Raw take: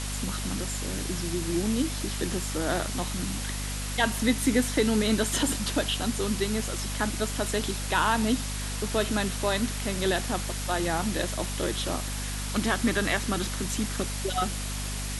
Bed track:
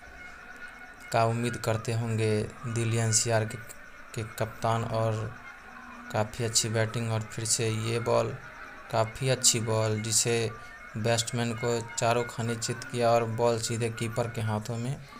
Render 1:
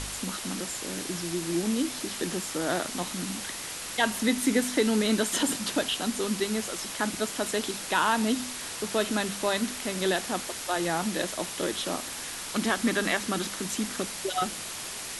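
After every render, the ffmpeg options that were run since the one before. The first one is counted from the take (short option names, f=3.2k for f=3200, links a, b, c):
-af "bandreject=f=50:t=h:w=4,bandreject=f=100:t=h:w=4,bandreject=f=150:t=h:w=4,bandreject=f=200:t=h:w=4,bandreject=f=250:t=h:w=4"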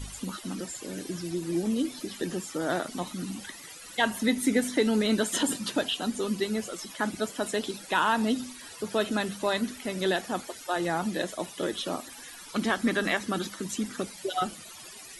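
-af "afftdn=nr=16:nf=-37"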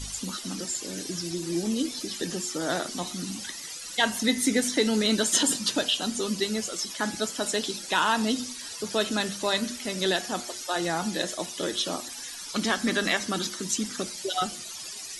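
-af "equalizer=f=5.6k:t=o:w=1.4:g=11,bandreject=f=119.8:t=h:w=4,bandreject=f=239.6:t=h:w=4,bandreject=f=359.4:t=h:w=4,bandreject=f=479.2:t=h:w=4,bandreject=f=599:t=h:w=4,bandreject=f=718.8:t=h:w=4,bandreject=f=838.6:t=h:w=4,bandreject=f=958.4:t=h:w=4,bandreject=f=1.0782k:t=h:w=4,bandreject=f=1.198k:t=h:w=4,bandreject=f=1.3178k:t=h:w=4,bandreject=f=1.4376k:t=h:w=4,bandreject=f=1.5574k:t=h:w=4,bandreject=f=1.6772k:t=h:w=4,bandreject=f=1.797k:t=h:w=4,bandreject=f=1.9168k:t=h:w=4,bandreject=f=2.0366k:t=h:w=4,bandreject=f=2.1564k:t=h:w=4,bandreject=f=2.2762k:t=h:w=4,bandreject=f=2.396k:t=h:w=4,bandreject=f=2.5158k:t=h:w=4,bandreject=f=2.6356k:t=h:w=4,bandreject=f=2.7554k:t=h:w=4,bandreject=f=2.8752k:t=h:w=4,bandreject=f=2.995k:t=h:w=4,bandreject=f=3.1148k:t=h:w=4,bandreject=f=3.2346k:t=h:w=4,bandreject=f=3.3544k:t=h:w=4"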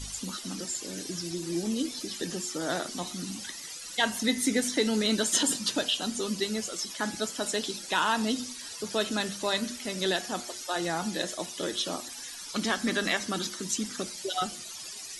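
-af "volume=-2.5dB"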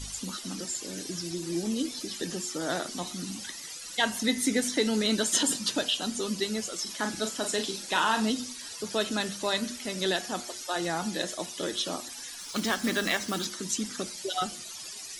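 -filter_complex "[0:a]asettb=1/sr,asplit=3[a][b][c];[a]atrim=end=6.824[d];[b]atrim=start=6.82:end=8.3,asetpts=PTS-STARTPTS,afade=t=in:d=0.004:c=qsin,afade=t=out:st=1.476:d=0.004:c=qsin,asplit=2[e][f];[f]adelay=41,volume=-7dB[g];[e][g]amix=inputs=2:normalize=0,atrim=end_sample=65268[h];[c]atrim=start=8.296[i];[d][h]acrossfade=d=0.004:c1=hsin:c2=qsin[j];[j][i]acrossfade=d=0.004:c1=qsin:c2=hsin,asettb=1/sr,asplit=3[k][l][m];[k]atrim=end=12.394[n];[l]atrim=start=12.39:end=13.45,asetpts=PTS-STARTPTS,afade=t=in:d=0.004:c=qsin,afade=t=out:st=1.056:d=0.004:c=qsin,acrusher=bits=3:mode=log:mix=0:aa=0.000001[o];[m]atrim=start=13.446[p];[n][o]acrossfade=d=0.004:c1=hsin:c2=qsin[q];[q][p]acrossfade=d=0.004:c1=qsin:c2=hsin"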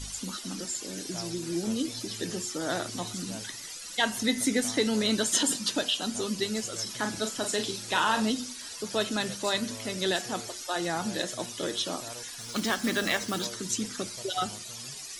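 -filter_complex "[1:a]volume=-19dB[a];[0:a][a]amix=inputs=2:normalize=0"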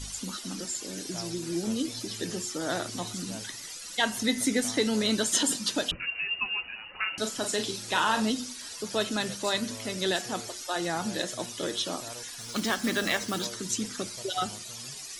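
-filter_complex "[0:a]asettb=1/sr,asplit=3[a][b][c];[a]atrim=end=5.914[d];[b]atrim=start=5.91:end=7.18,asetpts=PTS-STARTPTS,afade=t=in:d=0.004:c=qsin,afade=t=out:st=1.266:d=0.004:c=qsin,lowpass=f=2.6k:t=q:w=0.5098,lowpass=f=2.6k:t=q:w=0.6013,lowpass=f=2.6k:t=q:w=0.9,lowpass=f=2.6k:t=q:w=2.563,afreqshift=-3000[e];[c]atrim=start=7.176[f];[d][e]acrossfade=d=0.004:c1=hsin:c2=qsin[g];[g][f]acrossfade=d=0.004:c1=qsin:c2=hsin"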